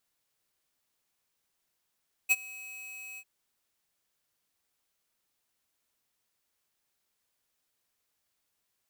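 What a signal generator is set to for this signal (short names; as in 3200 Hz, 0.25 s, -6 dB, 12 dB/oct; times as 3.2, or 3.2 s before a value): ADSR square 2550 Hz, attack 26 ms, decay 35 ms, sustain -23 dB, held 0.89 s, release 57 ms -21 dBFS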